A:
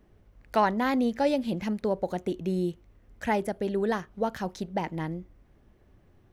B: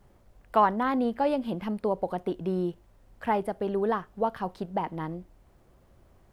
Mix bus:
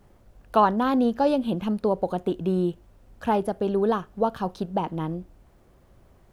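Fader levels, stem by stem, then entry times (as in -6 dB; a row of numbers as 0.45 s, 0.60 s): -5.5 dB, +2.5 dB; 0.00 s, 0.00 s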